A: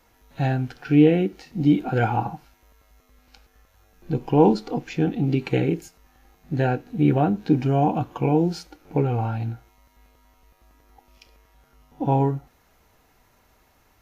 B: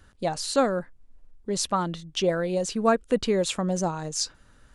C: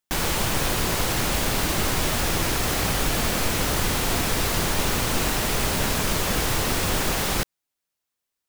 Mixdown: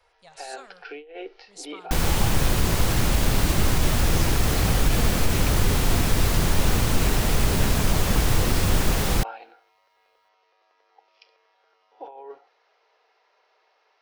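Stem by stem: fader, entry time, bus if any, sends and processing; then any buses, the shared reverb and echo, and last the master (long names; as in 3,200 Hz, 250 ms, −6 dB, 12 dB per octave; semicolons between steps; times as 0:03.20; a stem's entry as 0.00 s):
−7.0 dB, 0.00 s, no send, Chebyshev band-pass filter 420–5,200 Hz, order 4; compressor whose output falls as the input rises −32 dBFS, ratio −1
−11.0 dB, 0.00 s, no send, guitar amp tone stack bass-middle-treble 10-0-10
−2.5 dB, 1.80 s, no send, low-shelf EQ 200 Hz +11 dB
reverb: not used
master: brickwall limiter −8.5 dBFS, peak gain reduction 2.5 dB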